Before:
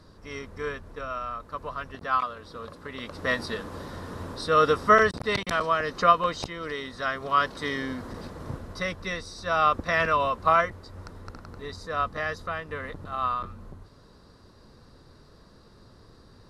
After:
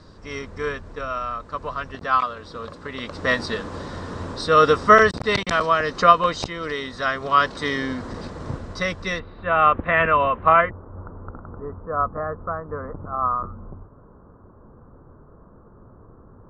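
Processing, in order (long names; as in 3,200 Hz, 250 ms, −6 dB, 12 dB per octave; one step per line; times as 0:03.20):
Butterworth low-pass 8,600 Hz 48 dB per octave, from 0:09.18 3,000 Hz, from 0:10.69 1,400 Hz
level +5.5 dB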